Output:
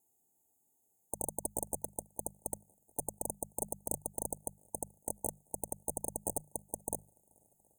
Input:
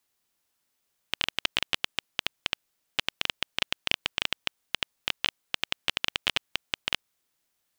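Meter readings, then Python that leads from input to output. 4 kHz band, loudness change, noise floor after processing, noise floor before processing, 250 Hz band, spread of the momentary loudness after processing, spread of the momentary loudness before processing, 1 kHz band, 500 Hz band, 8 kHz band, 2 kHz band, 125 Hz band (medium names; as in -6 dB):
under -40 dB, -9.0 dB, -76 dBFS, -78 dBFS, +0.5 dB, 5 LU, 6 LU, -6.0 dB, +1.5 dB, +7.0 dB, under -40 dB, -0.5 dB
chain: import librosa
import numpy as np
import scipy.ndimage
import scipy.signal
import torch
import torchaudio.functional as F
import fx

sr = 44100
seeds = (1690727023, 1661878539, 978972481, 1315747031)

p1 = fx.hum_notches(x, sr, base_hz=50, count=4)
p2 = fx.vibrato(p1, sr, rate_hz=5.5, depth_cents=48.0)
p3 = fx.notch_comb(p2, sr, f0_hz=580.0)
p4 = 10.0 ** (-23.5 / 20.0) * np.tanh(p3 / 10.0 ** (-23.5 / 20.0))
p5 = p4 + fx.echo_swing(p4, sr, ms=720, ratio=1.5, feedback_pct=49, wet_db=-24.0, dry=0)
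p6 = fx.cheby_harmonics(p5, sr, harmonics=(7,), levels_db=(-22,), full_scale_db=-23.0)
p7 = fx.brickwall_bandstop(p6, sr, low_hz=910.0, high_hz=6300.0)
y = p7 * librosa.db_to_amplitude(12.0)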